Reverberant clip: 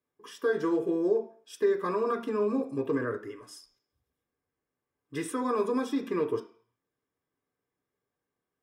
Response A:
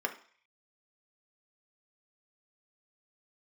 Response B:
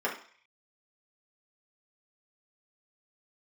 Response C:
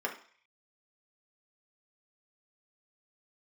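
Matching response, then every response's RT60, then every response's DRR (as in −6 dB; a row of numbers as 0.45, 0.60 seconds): A; 0.45, 0.45, 0.45 seconds; 3.5, −6.0, −1.0 decibels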